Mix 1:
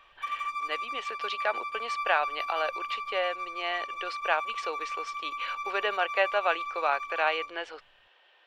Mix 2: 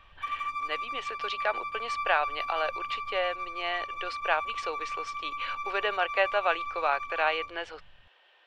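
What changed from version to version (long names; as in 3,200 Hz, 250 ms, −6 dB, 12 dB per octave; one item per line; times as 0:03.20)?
background: add bass and treble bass +15 dB, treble −5 dB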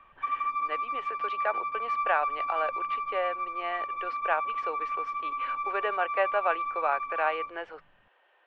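background +4.5 dB
master: add three-way crossover with the lows and the highs turned down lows −16 dB, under 180 Hz, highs −20 dB, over 2,200 Hz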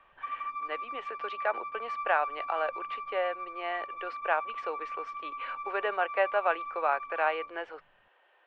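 background −6.5 dB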